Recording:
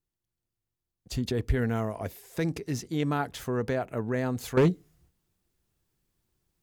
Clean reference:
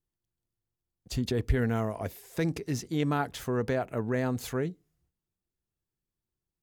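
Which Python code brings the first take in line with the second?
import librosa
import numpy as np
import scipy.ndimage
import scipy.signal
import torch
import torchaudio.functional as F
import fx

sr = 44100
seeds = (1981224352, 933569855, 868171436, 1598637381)

y = fx.fix_declip(x, sr, threshold_db=-16.0)
y = fx.fix_level(y, sr, at_s=4.57, step_db=-12.0)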